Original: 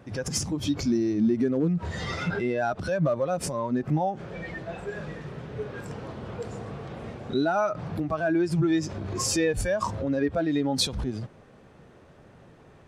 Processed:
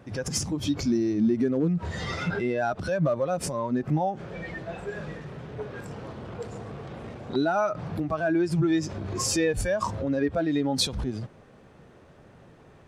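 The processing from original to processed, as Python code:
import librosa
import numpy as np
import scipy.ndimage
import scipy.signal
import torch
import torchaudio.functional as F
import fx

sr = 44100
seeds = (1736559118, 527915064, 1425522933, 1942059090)

y = fx.transformer_sat(x, sr, knee_hz=700.0, at=(5.17, 7.36))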